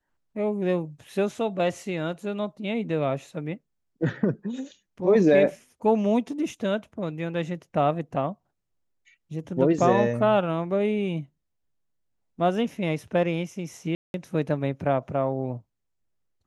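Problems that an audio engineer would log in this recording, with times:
13.95–14.14 s: dropout 191 ms

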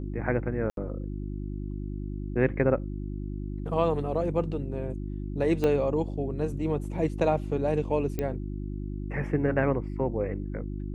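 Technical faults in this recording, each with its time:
hum 50 Hz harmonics 7 -34 dBFS
0.70–0.77 s: dropout 72 ms
5.64 s: pop -15 dBFS
8.19 s: pop -17 dBFS

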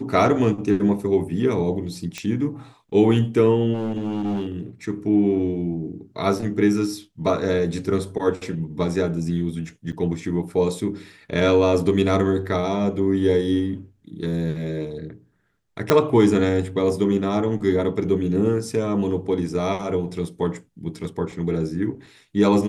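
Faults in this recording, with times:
2.18 s: pop -15 dBFS
3.73–4.52 s: clipped -21.5 dBFS
9.92–9.93 s: dropout 8 ms
15.90 s: pop -2 dBFS

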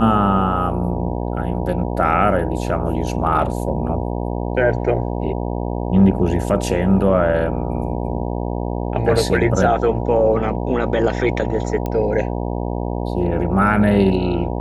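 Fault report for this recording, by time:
buzz 60 Hz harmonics 16 -23 dBFS
11.86 s: pop -12 dBFS

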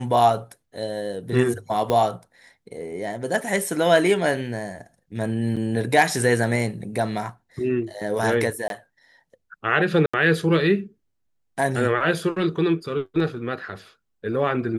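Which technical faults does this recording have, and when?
1.90 s: pop -10 dBFS
5.56–5.57 s: dropout 6.3 ms
8.68–8.70 s: dropout 22 ms
10.06–10.13 s: dropout 75 ms

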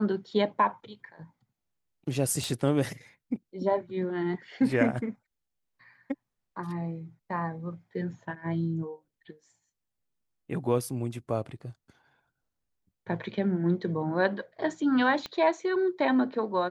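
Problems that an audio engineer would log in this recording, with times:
2.44 s: pop
15.26 s: pop -22 dBFS

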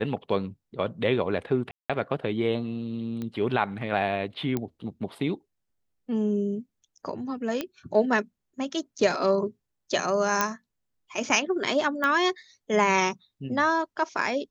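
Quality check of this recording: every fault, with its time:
1.71–1.90 s: dropout 186 ms
3.22 s: pop -22 dBFS
4.57 s: pop -15 dBFS
7.61 s: pop -14 dBFS
10.41 s: pop -7 dBFS
12.04 s: pop -14 dBFS

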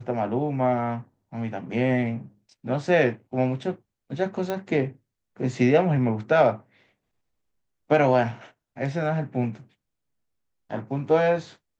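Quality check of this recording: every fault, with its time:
4.50 s: pop -15 dBFS

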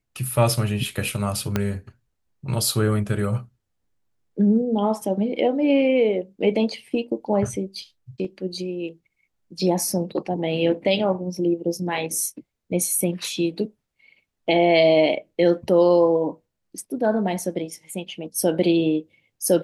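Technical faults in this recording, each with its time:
1.56 s: pop -8 dBFS

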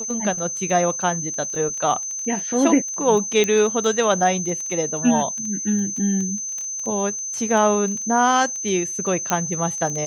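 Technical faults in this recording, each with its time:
crackle 11 per s -25 dBFS
whine 6.2 kHz -26 dBFS
3.44 s: pop -8 dBFS
9.30 s: pop -5 dBFS

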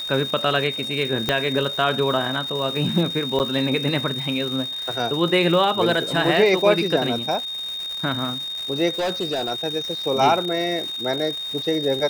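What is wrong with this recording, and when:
crackle 450 per s -29 dBFS
whine 3.7 kHz -27 dBFS
1.29 s: pop -5 dBFS
3.39–3.40 s: dropout 9 ms
8.94–9.52 s: clipped -20 dBFS

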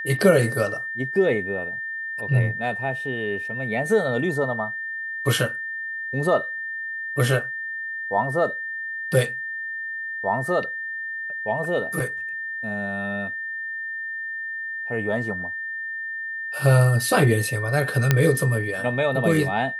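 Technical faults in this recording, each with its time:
whine 1.8 kHz -28 dBFS
18.11 s: pop -3 dBFS

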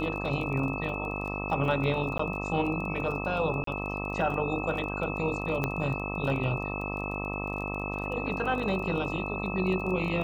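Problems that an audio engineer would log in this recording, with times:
buzz 50 Hz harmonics 26 -35 dBFS
crackle 21 per s -36 dBFS
whine 2.6 kHz -36 dBFS
2.18–2.19 s: dropout 14 ms
3.64–3.67 s: dropout 33 ms
5.64 s: pop -15 dBFS

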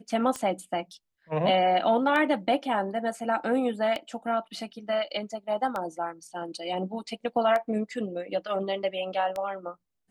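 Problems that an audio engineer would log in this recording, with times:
tick 33 1/3 rpm -18 dBFS

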